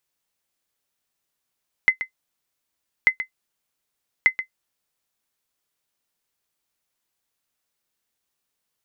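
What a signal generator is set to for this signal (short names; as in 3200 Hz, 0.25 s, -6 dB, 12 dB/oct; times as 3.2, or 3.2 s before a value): sonar ping 2050 Hz, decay 0.10 s, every 1.19 s, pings 3, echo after 0.13 s, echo -12 dB -5.5 dBFS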